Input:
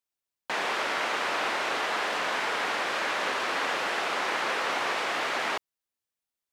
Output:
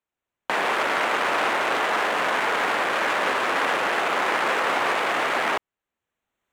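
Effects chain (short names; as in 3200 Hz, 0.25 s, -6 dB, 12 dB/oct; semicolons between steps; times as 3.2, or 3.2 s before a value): Wiener smoothing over 9 samples; recorder AGC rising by 12 dB/s; gain +7 dB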